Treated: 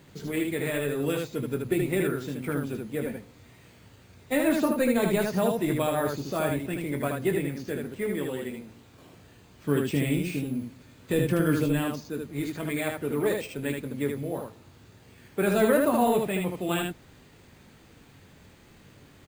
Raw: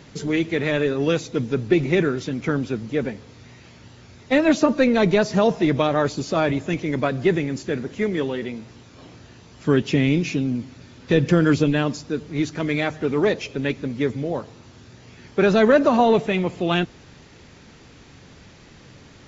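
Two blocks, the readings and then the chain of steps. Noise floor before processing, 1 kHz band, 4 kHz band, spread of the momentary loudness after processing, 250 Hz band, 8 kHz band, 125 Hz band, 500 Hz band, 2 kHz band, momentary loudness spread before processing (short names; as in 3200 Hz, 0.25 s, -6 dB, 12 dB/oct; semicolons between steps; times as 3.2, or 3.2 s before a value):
-48 dBFS, -6.5 dB, -8.0 dB, 11 LU, -6.5 dB, n/a, -6.5 dB, -6.5 dB, -7.0 dB, 11 LU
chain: careless resampling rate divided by 4×, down filtered, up hold; early reflections 21 ms -8.5 dB, 77 ms -3.5 dB; gain -8.5 dB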